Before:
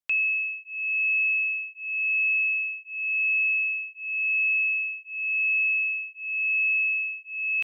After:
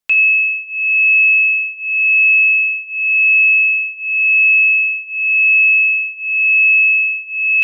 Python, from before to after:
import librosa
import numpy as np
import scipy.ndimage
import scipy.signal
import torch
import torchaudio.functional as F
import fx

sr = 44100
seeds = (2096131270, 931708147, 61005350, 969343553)

y = fx.room_shoebox(x, sr, seeds[0], volume_m3=540.0, walls='furnished', distance_m=1.5)
y = F.gain(torch.from_numpy(y), 9.0).numpy()